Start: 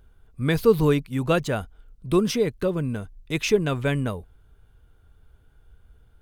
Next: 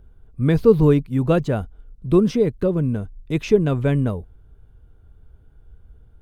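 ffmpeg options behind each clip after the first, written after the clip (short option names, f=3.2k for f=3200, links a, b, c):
-filter_complex "[0:a]tiltshelf=f=910:g=6.5,acrossover=split=7200[a][b];[b]alimiter=level_in=22dB:limit=-24dB:level=0:latency=1,volume=-22dB[c];[a][c]amix=inputs=2:normalize=0"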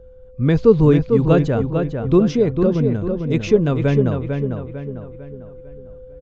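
-filter_complex "[0:a]aeval=exprs='val(0)+0.00562*sin(2*PI*510*n/s)':c=same,asplit=2[a][b];[b]adelay=449,lowpass=f=3.2k:p=1,volume=-5.5dB,asplit=2[c][d];[d]adelay=449,lowpass=f=3.2k:p=1,volume=0.44,asplit=2[e][f];[f]adelay=449,lowpass=f=3.2k:p=1,volume=0.44,asplit=2[g][h];[h]adelay=449,lowpass=f=3.2k:p=1,volume=0.44,asplit=2[i][j];[j]adelay=449,lowpass=f=3.2k:p=1,volume=0.44[k];[a][c][e][g][i][k]amix=inputs=6:normalize=0,aresample=16000,aresample=44100,volume=1.5dB"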